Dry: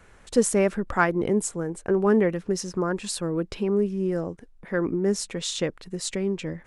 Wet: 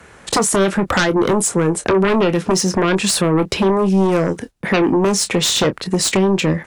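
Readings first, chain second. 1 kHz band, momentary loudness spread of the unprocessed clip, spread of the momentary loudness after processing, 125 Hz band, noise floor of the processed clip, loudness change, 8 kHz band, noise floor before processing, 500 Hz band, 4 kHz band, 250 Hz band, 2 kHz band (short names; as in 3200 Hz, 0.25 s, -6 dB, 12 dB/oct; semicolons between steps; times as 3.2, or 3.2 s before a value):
+11.0 dB, 9 LU, 3 LU, +10.5 dB, -44 dBFS, +9.5 dB, +12.5 dB, -53 dBFS, +7.5 dB, +15.0 dB, +9.0 dB, +10.0 dB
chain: gate -46 dBFS, range -17 dB; HPF 83 Hz; compressor 6:1, threshold -23 dBFS, peak gain reduction 9.5 dB; sine folder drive 12 dB, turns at -12.5 dBFS; doubler 26 ms -11.5 dB; three-band squash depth 40%; gain +1 dB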